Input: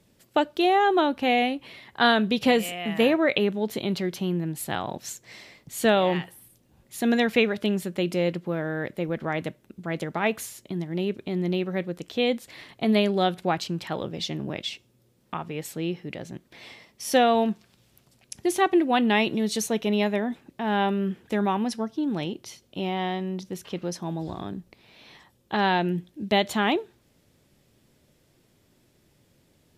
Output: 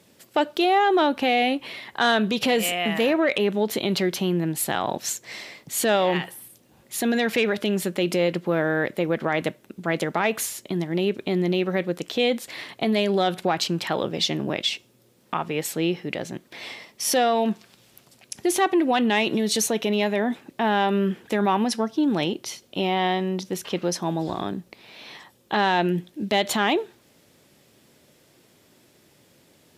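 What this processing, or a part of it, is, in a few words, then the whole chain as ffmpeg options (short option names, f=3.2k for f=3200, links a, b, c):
soft clipper into limiter: -af "asoftclip=type=tanh:threshold=-11.5dB,alimiter=limit=-20.5dB:level=0:latency=1:release=68,highpass=f=280:p=1,volume=8.5dB"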